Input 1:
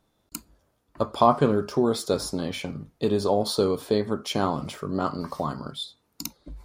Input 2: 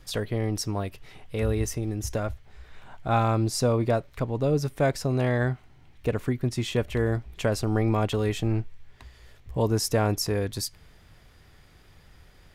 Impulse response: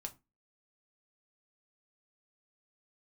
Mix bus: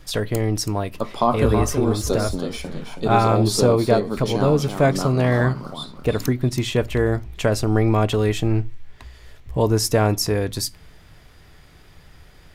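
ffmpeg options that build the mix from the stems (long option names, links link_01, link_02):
-filter_complex "[0:a]highpass=140,bass=frequency=250:gain=5,treble=frequency=4000:gain=1,volume=-1dB,asplit=2[link_01][link_02];[link_02]volume=-7.5dB[link_03];[1:a]volume=3dB,asplit=2[link_04][link_05];[link_05]volume=-4dB[link_06];[2:a]atrim=start_sample=2205[link_07];[link_06][link_07]afir=irnorm=-1:irlink=0[link_08];[link_03]aecho=0:1:326|652|978|1304:1|0.28|0.0784|0.022[link_09];[link_01][link_04][link_08][link_09]amix=inputs=4:normalize=0"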